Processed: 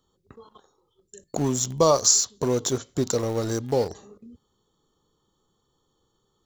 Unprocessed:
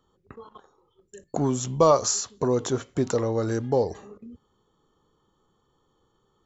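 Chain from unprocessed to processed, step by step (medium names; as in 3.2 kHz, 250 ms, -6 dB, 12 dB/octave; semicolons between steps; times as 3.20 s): FFT filter 140 Hz 0 dB, 510 Hz -1 dB, 2.5 kHz -4 dB, 3.8 kHz +7 dB; in parallel at -7.5 dB: small samples zeroed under -25 dBFS; on the sum: trim -2.5 dB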